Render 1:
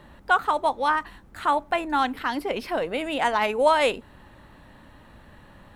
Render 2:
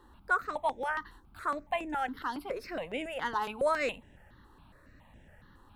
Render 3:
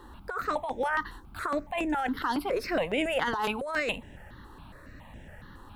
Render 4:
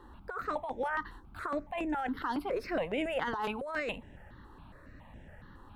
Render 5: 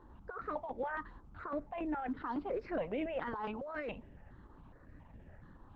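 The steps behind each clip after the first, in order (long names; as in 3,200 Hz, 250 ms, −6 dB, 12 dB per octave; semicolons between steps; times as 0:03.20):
step-sequenced phaser 7.2 Hz 620–4,300 Hz; level −6 dB
compressor whose output falls as the input rises −35 dBFS, ratio −1; level +6.5 dB
high-shelf EQ 3,400 Hz −9 dB; level −4 dB
head-to-tape spacing loss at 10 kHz 30 dB; level −2 dB; Opus 12 kbit/s 48,000 Hz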